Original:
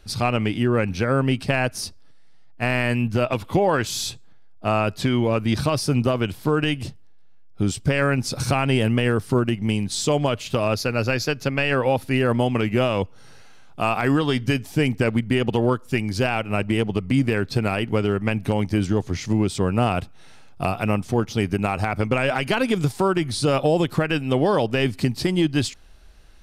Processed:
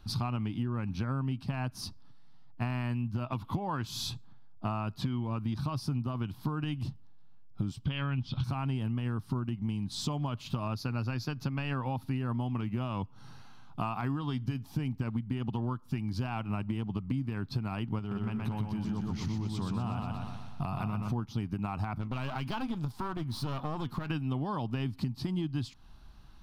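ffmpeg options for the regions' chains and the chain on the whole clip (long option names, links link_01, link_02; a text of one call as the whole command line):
ffmpeg -i in.wav -filter_complex "[0:a]asettb=1/sr,asplit=3[link_01][link_02][link_03];[link_01]atrim=end=7.854[link_04];[link_02]atrim=start=7.85:end=8.44,asetpts=PTS-STARTPTS,afade=type=in:duration=0.004:curve=qsin,afade=type=out:start_time=0.586:duration=0.004:curve=qsin,lowpass=frequency=3200:width_type=q:width=11,asubboost=boost=10:cutoff=210[link_05];[link_03]atrim=start=8.436[link_06];[link_04][link_05]acrossfade=duration=0.004:curve1=hsin:curve2=qsin[link_07];[link_07][link_06]acrossfade=duration=0.004:curve1=qsin:curve2=hsin,asettb=1/sr,asplit=3[link_08][link_09][link_10];[link_08]atrim=end=17.994[link_11];[link_09]atrim=start=17.99:end=21.12,asetpts=PTS-STARTPTS,afade=type=in:duration=0.004:curve=qsin,afade=type=out:start_time=3.126:duration=0.004:curve=qsin,equalizer=frequency=300:width_type=o:width=0.4:gain=-4.5,acompressor=threshold=-26dB:ratio=2.5:attack=3.2:release=140:knee=1:detection=peak,aecho=1:1:123|246|369|492|615|738|861:0.708|0.361|0.184|0.0939|0.0479|0.0244|0.0125,atrim=end_sample=138033[link_12];[link_10]atrim=start=21.116[link_13];[link_11][link_12]acrossfade=duration=0.004:curve1=hsin:curve2=qsin[link_14];[link_14][link_13]acrossfade=duration=0.004:curve1=qsin:curve2=hsin,asettb=1/sr,asplit=3[link_15][link_16][link_17];[link_15]atrim=end=21.984[link_18];[link_16]atrim=start=21.98:end=24.1,asetpts=PTS-STARTPTS,afade=type=in:duration=0.004:curve=qsin,afade=type=out:start_time=2.116:duration=0.004:curve=qsin,flanger=delay=3.3:depth=1.7:regen=84:speed=1.7:shape=triangular,aeval=exprs='clip(val(0),-1,0.015)':channel_layout=same[link_19];[link_17]atrim=start=24.096[link_20];[link_18][link_19]acrossfade=duration=0.004:curve1=hsin:curve2=qsin[link_21];[link_21][link_20]acrossfade=duration=0.004:curve1=qsin:curve2=hsin,equalizer=frequency=125:width_type=o:width=1:gain=8,equalizer=frequency=250:width_type=o:width=1:gain=6,equalizer=frequency=500:width_type=o:width=1:gain=-12,equalizer=frequency=1000:width_type=o:width=1:gain=10,equalizer=frequency=2000:width_type=o:width=1:gain=-8,equalizer=frequency=4000:width_type=o:width=1:gain=3,equalizer=frequency=8000:width_type=o:width=1:gain=-10,acompressor=threshold=-26dB:ratio=6,volume=-4.5dB" out.wav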